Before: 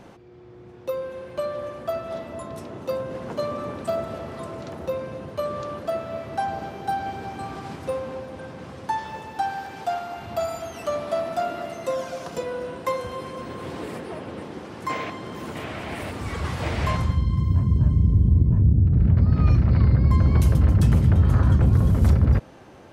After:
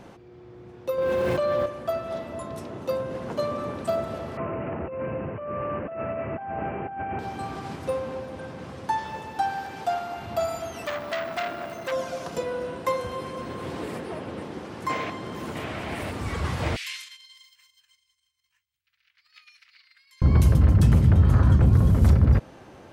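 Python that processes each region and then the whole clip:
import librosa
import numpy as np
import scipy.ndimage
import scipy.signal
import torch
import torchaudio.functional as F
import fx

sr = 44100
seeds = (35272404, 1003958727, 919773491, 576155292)

y = fx.chain(x, sr, fx.lowpass(hz=6300.0, slope=12),
    fx.sample_gate(floor_db=-53.0),
    fx.env_flatten(amount_pct=100), at=(0.98, 1.66))
y = fx.chain(y, sr, fx.law_mismatch(coded='mu'),
    fx.steep_lowpass(hz=2800.0, slope=96),
    fx.over_compress(threshold_db=-31.0, ratio=-1.0), at=(4.37, 7.19))
y = fx.chain(y, sr, fx.resample_bad(factor=2, down='none', up='hold'),
    fx.transformer_sat(knee_hz=2600.0), at=(10.85, 11.92))
y = fx.chain(y, sr, fx.over_compress(threshold_db=-22.0, ratio=-1.0),
    fx.cheby2_highpass(hz=530.0, order=4, stop_db=70), at=(16.76, 20.22))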